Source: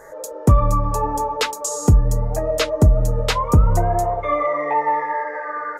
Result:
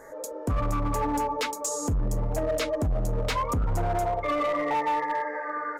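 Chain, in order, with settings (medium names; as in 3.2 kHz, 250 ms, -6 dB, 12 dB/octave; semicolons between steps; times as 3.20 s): small resonant body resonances 270/2200 Hz, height 10 dB, ringing for 50 ms; peak limiter -11.5 dBFS, peak gain reduction 11 dB; hard clipper -17 dBFS, distortion -14 dB; trim -5 dB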